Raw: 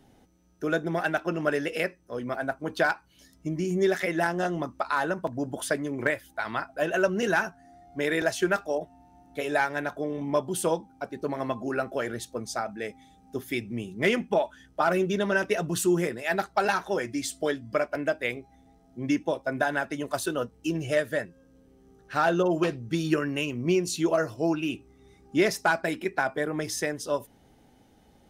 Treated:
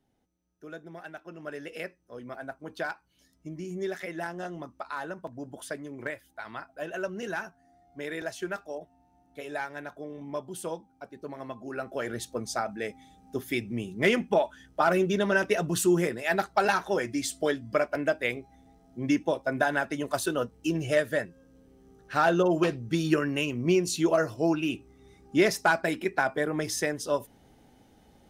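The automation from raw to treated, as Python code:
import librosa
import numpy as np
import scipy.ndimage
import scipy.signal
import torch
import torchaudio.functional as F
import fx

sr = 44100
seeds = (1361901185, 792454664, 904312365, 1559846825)

y = fx.gain(x, sr, db=fx.line((1.28, -16.0), (1.76, -9.0), (11.61, -9.0), (12.21, 0.5)))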